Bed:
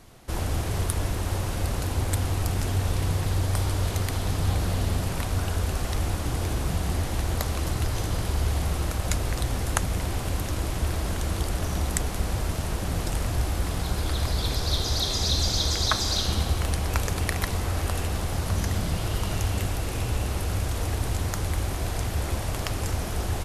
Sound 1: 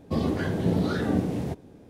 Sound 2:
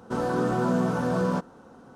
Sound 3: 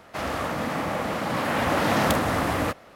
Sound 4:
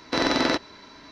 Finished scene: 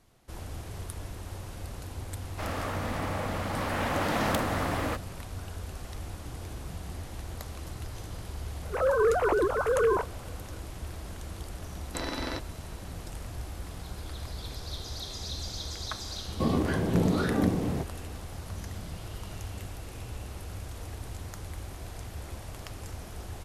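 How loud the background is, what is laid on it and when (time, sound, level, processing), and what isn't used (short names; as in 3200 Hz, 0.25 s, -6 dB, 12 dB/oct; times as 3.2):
bed -12.5 dB
2.24 add 3 -6 dB
8.63 add 2 + sine-wave speech
11.82 add 4 -12.5 dB
16.29 add 1 -1 dB + bell 1100 Hz +4.5 dB 0.39 oct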